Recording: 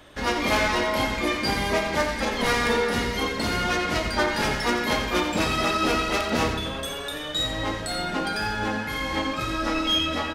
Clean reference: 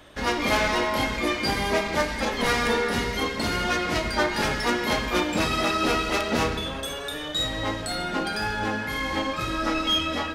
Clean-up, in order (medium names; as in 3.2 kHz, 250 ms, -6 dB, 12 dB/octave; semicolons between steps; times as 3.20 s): clip repair -12.5 dBFS; inverse comb 88 ms -9.5 dB